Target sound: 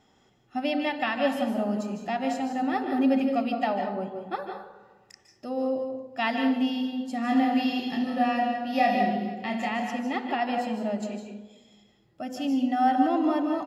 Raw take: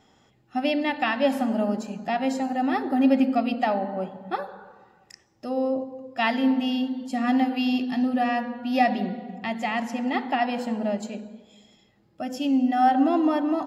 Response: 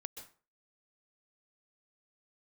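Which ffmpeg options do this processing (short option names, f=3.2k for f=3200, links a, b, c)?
-filter_complex "[0:a]asplit=3[a][b][c];[a]afade=t=out:st=7.29:d=0.02[d];[b]aecho=1:1:30|78|154.8|277.7|474.3:0.631|0.398|0.251|0.158|0.1,afade=t=in:st=7.29:d=0.02,afade=t=out:st=9.67:d=0.02[e];[c]afade=t=in:st=9.67:d=0.02[f];[d][e][f]amix=inputs=3:normalize=0[g];[1:a]atrim=start_sample=2205,asetrate=37044,aresample=44100[h];[g][h]afir=irnorm=-1:irlink=0"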